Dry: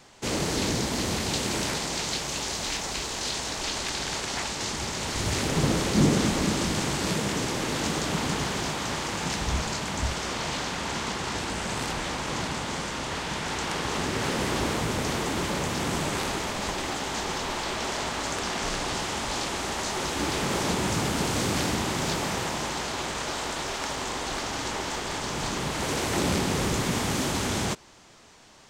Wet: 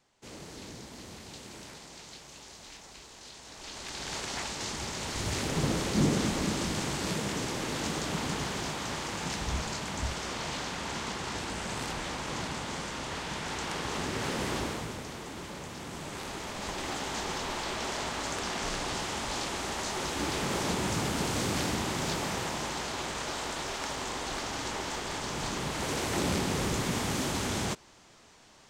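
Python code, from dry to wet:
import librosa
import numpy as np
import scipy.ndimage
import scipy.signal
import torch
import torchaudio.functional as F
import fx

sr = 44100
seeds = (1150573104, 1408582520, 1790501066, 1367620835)

y = fx.gain(x, sr, db=fx.line((3.38, -18.0), (4.17, -5.0), (14.55, -5.0), (15.08, -13.0), (15.91, -13.0), (16.93, -4.0)))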